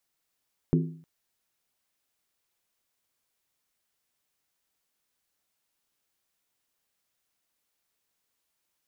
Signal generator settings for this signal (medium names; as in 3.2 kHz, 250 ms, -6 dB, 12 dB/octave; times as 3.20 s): skin hit length 0.31 s, lowest mode 162 Hz, decay 0.53 s, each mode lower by 4 dB, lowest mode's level -18 dB